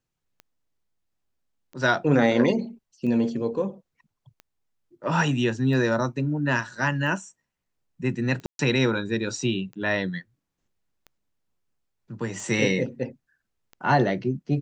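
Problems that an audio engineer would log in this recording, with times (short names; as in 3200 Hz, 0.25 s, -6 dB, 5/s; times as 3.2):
tick 45 rpm -28 dBFS
8.46–8.59 gap 0.132 s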